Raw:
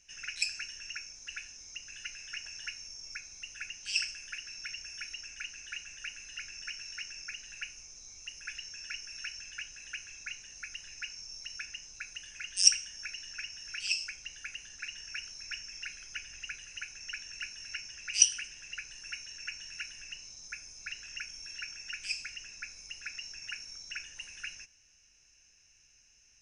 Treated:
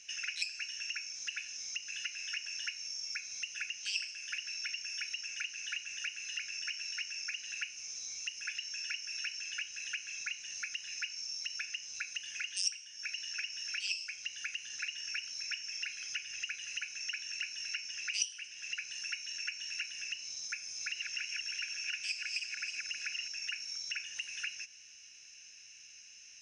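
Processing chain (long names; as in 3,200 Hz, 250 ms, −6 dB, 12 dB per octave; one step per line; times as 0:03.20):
0:20.65–0:23.28: feedback delay that plays each chunk backwards 159 ms, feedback 52%, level −1.5 dB
meter weighting curve D
downward compressor 3 to 1, threshold −40 dBFS, peak gain reduction 25 dB
level +1 dB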